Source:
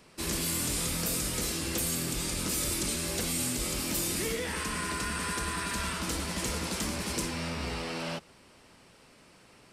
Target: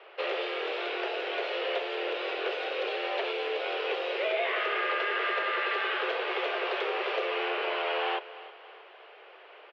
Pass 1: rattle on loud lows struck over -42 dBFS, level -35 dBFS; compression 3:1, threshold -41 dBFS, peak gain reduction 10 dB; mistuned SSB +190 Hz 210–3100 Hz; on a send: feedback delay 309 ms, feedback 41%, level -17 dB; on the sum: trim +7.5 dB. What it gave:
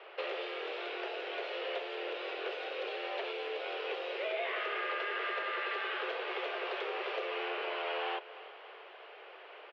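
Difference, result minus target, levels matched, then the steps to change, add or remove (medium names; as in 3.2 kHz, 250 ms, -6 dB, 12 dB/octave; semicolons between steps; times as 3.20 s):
compression: peak gain reduction +6.5 dB
change: compression 3:1, threshold -31 dBFS, peak gain reduction 3.5 dB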